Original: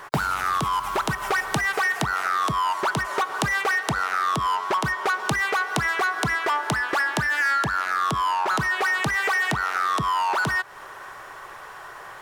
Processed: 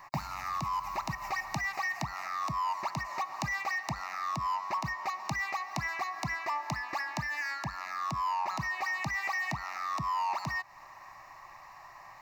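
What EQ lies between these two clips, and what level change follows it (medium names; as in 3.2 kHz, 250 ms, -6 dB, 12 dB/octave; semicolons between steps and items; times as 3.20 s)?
static phaser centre 2.2 kHz, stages 8; -7.5 dB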